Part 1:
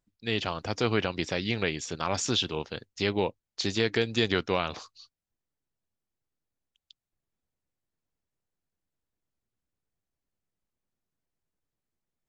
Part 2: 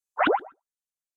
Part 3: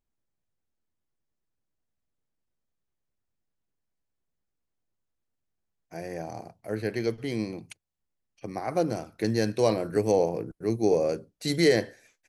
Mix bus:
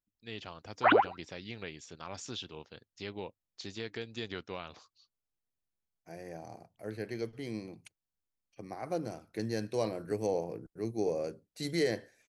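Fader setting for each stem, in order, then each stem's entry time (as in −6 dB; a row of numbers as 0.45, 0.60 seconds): −14.0, −1.5, −9.0 decibels; 0.00, 0.65, 0.15 seconds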